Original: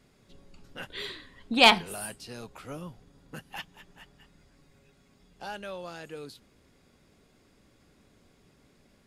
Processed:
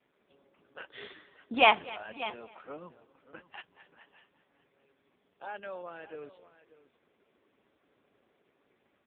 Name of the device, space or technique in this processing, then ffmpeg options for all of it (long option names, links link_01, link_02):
satellite phone: -filter_complex "[0:a]asplit=3[link_01][link_02][link_03];[link_01]afade=type=out:start_time=2.38:duration=0.02[link_04];[link_02]highshelf=frequency=3700:gain=-4,afade=type=in:start_time=2.38:duration=0.02,afade=type=out:start_time=3.38:duration=0.02[link_05];[link_03]afade=type=in:start_time=3.38:duration=0.02[link_06];[link_04][link_05][link_06]amix=inputs=3:normalize=0,highpass=340,lowpass=3100,aecho=1:1:251|502:0.0891|0.0214,aecho=1:1:588:0.158" -ar 8000 -c:a libopencore_amrnb -b:a 5150